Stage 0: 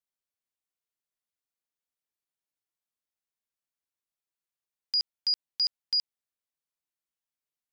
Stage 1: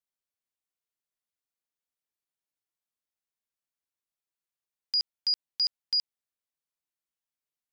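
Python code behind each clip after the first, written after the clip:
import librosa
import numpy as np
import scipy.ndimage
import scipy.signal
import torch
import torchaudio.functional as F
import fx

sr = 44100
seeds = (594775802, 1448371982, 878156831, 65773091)

y = x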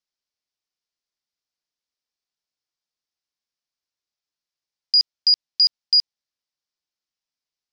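y = fx.lowpass_res(x, sr, hz=5200.0, q=3.1)
y = F.gain(torch.from_numpy(y), 1.0).numpy()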